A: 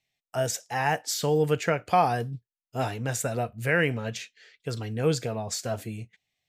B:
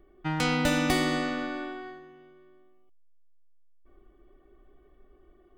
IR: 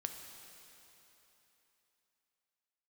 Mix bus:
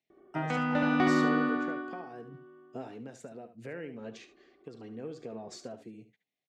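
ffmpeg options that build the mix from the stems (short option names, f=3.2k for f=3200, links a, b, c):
-filter_complex "[0:a]equalizer=f=290:w=0.56:g=13.5,acompressor=threshold=-24dB:ratio=12,volume=-11dB,asplit=2[a][b];[b]volume=-12dB[c];[1:a]lowpass=1.9k,adelay=100,volume=2dB,asplit=2[d][e];[e]volume=-3dB[f];[c][f]amix=inputs=2:normalize=0,aecho=0:1:72:1[g];[a][d][g]amix=inputs=3:normalize=0,tremolo=f=0.75:d=0.45,highpass=190,lowpass=6.1k"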